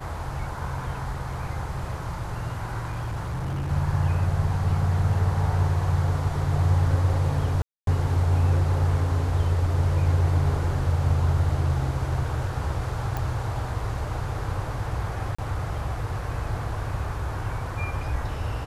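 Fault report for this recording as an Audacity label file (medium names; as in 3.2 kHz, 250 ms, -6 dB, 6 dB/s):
2.810000	3.710000	clipped -25.5 dBFS
7.620000	7.870000	dropout 252 ms
13.170000	13.170000	pop
15.350000	15.380000	dropout 35 ms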